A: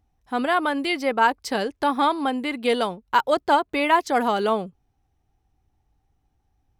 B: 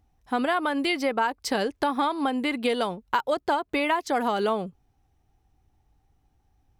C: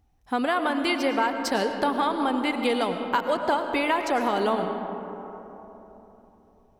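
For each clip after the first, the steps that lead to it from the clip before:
downward compressor 6 to 1, threshold −24 dBFS, peak gain reduction 11 dB; level +2.5 dB
convolution reverb RT60 3.6 s, pre-delay 70 ms, DRR 5.5 dB

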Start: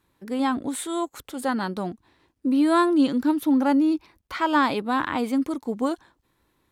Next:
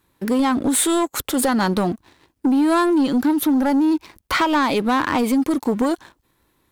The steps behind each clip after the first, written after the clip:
downward compressor, threshold −28 dBFS, peak gain reduction 12 dB
high-shelf EQ 9,200 Hz +6.5 dB
leveller curve on the samples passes 2
level +7.5 dB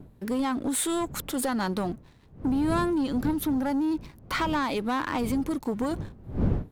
wind on the microphone 180 Hz −27 dBFS
level −9 dB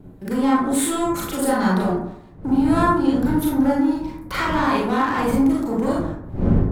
convolution reverb RT60 0.75 s, pre-delay 28 ms, DRR −6.5 dB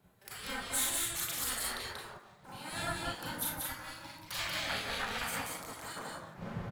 guitar amp tone stack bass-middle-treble 10-0-10
single-tap delay 186 ms −3 dB
gate on every frequency bin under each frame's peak −10 dB weak
level −1.5 dB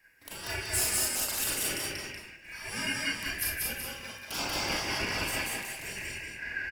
band-splitting scrambler in four parts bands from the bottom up 2143
single-tap delay 190 ms −4.5 dB
level +3.5 dB

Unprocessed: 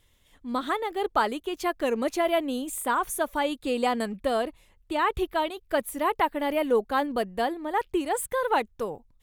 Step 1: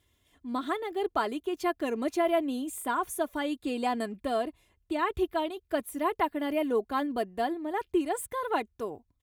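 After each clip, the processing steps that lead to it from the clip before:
high-pass filter 77 Hz 12 dB per octave
low-shelf EQ 410 Hz +6 dB
comb filter 2.9 ms, depth 48%
level −6.5 dB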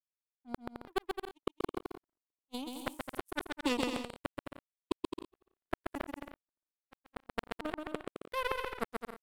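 gate with flip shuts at −23 dBFS, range −36 dB
power curve on the samples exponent 3
bouncing-ball delay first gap 130 ms, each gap 0.65×, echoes 5
level +10 dB

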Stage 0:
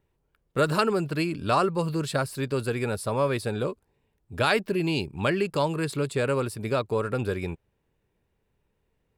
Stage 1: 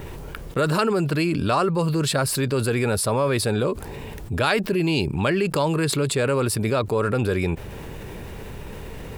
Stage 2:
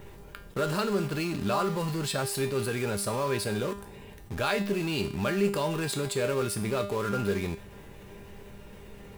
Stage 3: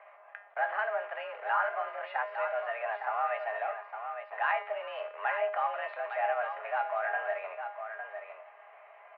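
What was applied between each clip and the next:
envelope flattener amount 70%
in parallel at −6.5 dB: bit reduction 4 bits; on the sum: tuned comb filter 200 Hz, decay 0.49 s, harmonics all, mix 80%
single-sideband voice off tune +220 Hz 430–2,100 Hz; single-tap delay 858 ms −8 dB

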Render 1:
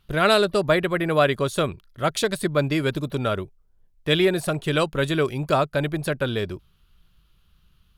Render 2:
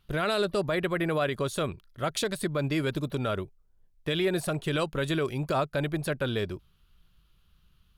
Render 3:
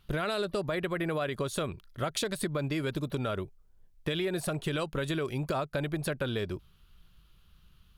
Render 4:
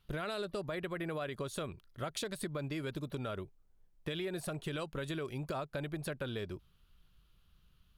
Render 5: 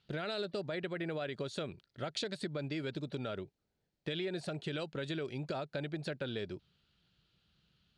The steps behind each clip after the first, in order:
brickwall limiter −14.5 dBFS, peak gain reduction 8 dB; level −3.5 dB
downward compressor 5 to 1, threshold −32 dBFS, peak gain reduction 9.5 dB; level +3.5 dB
background noise brown −72 dBFS; level −7 dB
loudspeaker in its box 120–7,000 Hz, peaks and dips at 1,100 Hz −10 dB, 4,300 Hz +5 dB, 6,200 Hz −3 dB; level +1 dB

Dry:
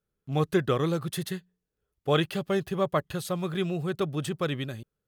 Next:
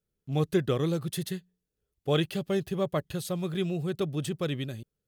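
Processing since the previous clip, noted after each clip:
parametric band 1,200 Hz −7.5 dB 1.6 octaves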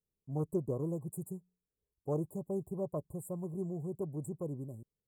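linear-phase brick-wall band-stop 1,100–7,000 Hz
highs frequency-modulated by the lows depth 0.14 ms
level −8 dB

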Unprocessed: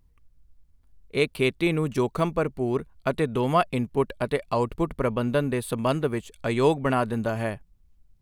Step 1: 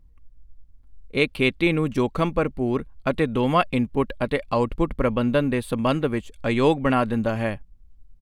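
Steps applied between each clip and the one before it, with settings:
spectral tilt −1.5 dB per octave
comb filter 3.7 ms, depth 30%
dynamic equaliser 2,700 Hz, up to +7 dB, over −42 dBFS, Q 0.75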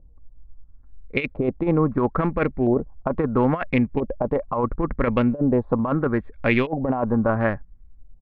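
adaptive Wiener filter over 15 samples
auto-filter low-pass saw up 0.75 Hz 600–2,800 Hz
compressor whose output falls as the input rises −20 dBFS, ratio −0.5
level +1 dB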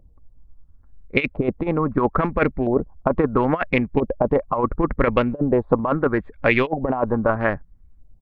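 harmonic and percussive parts rebalanced percussive +9 dB
level −4 dB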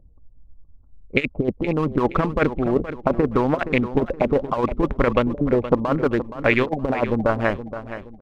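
adaptive Wiener filter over 25 samples
on a send: repeating echo 471 ms, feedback 36%, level −12 dB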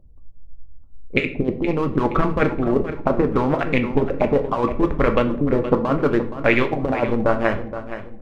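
convolution reverb RT60 0.50 s, pre-delay 7 ms, DRR 5.5 dB

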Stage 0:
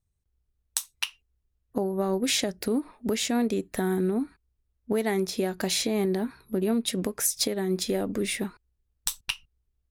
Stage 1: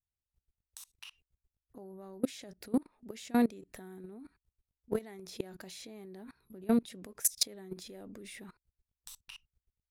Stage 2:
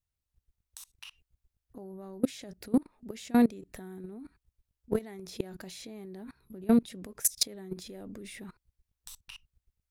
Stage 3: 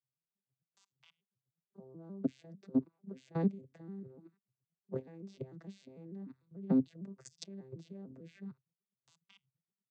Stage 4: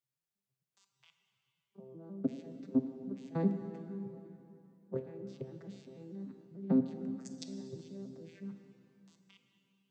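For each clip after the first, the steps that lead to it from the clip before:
output level in coarse steps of 24 dB
low-shelf EQ 200 Hz +6.5 dB; level +2 dB
vocoder with an arpeggio as carrier major triad, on C3, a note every 149 ms; level −6 dB
dense smooth reverb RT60 3 s, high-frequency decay 0.85×, DRR 6 dB

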